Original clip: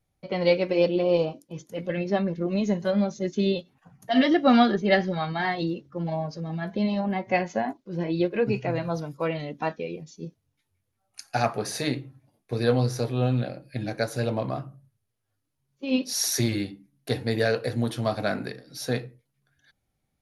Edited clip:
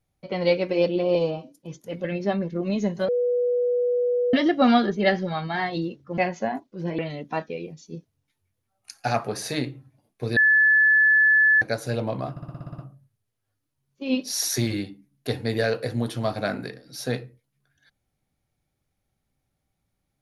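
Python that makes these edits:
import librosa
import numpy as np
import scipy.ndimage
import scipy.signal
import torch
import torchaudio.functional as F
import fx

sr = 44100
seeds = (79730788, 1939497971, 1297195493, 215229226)

y = fx.edit(x, sr, fx.stretch_span(start_s=1.15, length_s=0.29, factor=1.5),
    fx.bleep(start_s=2.94, length_s=1.25, hz=489.0, db=-19.5),
    fx.cut(start_s=6.03, length_s=1.28),
    fx.cut(start_s=8.12, length_s=1.16),
    fx.bleep(start_s=12.66, length_s=1.25, hz=1730.0, db=-14.0),
    fx.stutter(start_s=14.6, slice_s=0.06, count=9), tone=tone)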